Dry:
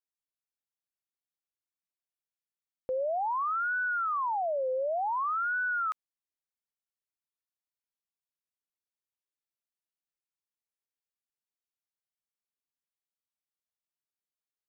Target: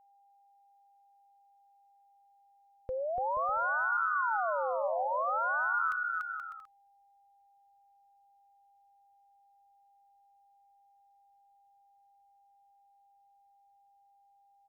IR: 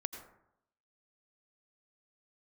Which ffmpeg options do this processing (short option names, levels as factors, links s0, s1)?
-af "aecho=1:1:290|478.5|601|680.7|732.4:0.631|0.398|0.251|0.158|0.1,aeval=exprs='val(0)+0.001*sin(2*PI*800*n/s)':c=same,asubboost=boost=9:cutoff=110,volume=0.794"